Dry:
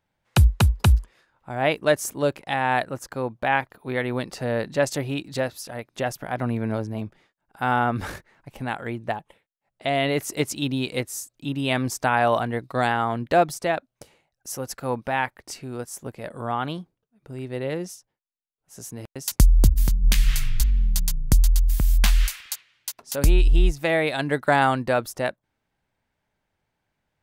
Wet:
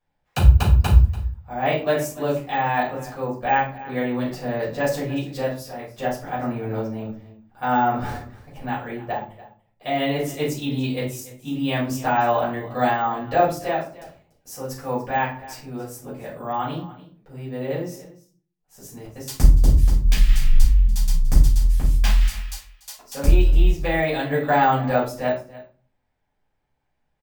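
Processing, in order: delay 290 ms -18 dB; simulated room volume 280 m³, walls furnished, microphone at 5.8 m; careless resampling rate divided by 2×, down filtered, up hold; trim -11 dB

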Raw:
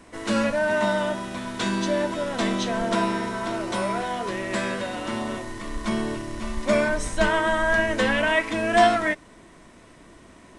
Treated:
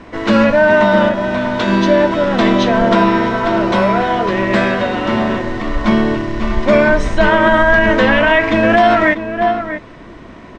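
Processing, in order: 1.08–1.68 s: compression, threshold -27 dBFS, peak gain reduction 5.5 dB; distance through air 190 m; echo from a far wall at 110 m, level -10 dB; loudness maximiser +14.5 dB; trim -1 dB

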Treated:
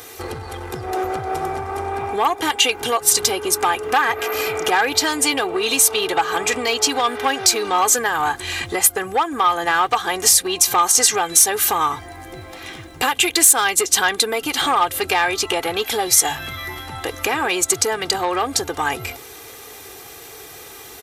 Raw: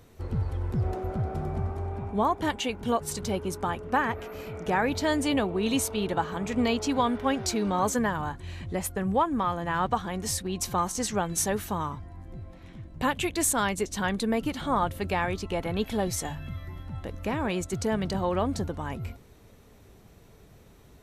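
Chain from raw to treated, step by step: treble shelf 8.2 kHz +7 dB; hard clipper -16 dBFS, distortion -27 dB; compression, threshold -32 dBFS, peak gain reduction 12 dB; high-pass 1.2 kHz 6 dB/octave; comb 2.5 ms, depth 69%; loudness maximiser +22 dB; transformer saturation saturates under 1.7 kHz

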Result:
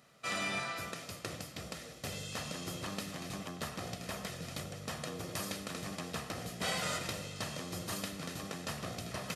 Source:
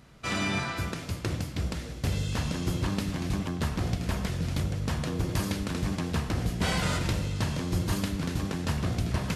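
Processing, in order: Bessel high-pass 270 Hz, order 2; treble shelf 6.3 kHz +5 dB; comb 1.6 ms, depth 40%; trim -6 dB

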